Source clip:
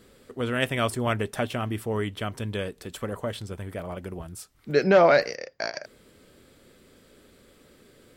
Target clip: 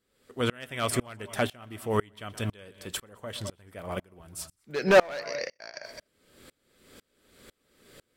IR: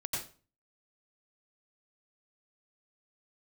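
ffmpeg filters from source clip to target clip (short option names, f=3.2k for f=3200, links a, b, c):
-filter_complex "[0:a]asplit=2[a][b];[1:a]atrim=start_sample=2205,atrim=end_sample=4410,adelay=122[c];[b][c]afir=irnorm=-1:irlink=0,volume=-16.5dB[d];[a][d]amix=inputs=2:normalize=0,volume=16dB,asoftclip=hard,volume=-16dB,tiltshelf=f=770:g=-3,aeval=exprs='val(0)*pow(10,-31*if(lt(mod(-2*n/s,1),2*abs(-2)/1000),1-mod(-2*n/s,1)/(2*abs(-2)/1000),(mod(-2*n/s,1)-2*abs(-2)/1000)/(1-2*abs(-2)/1000))/20)':c=same,volume=6.5dB"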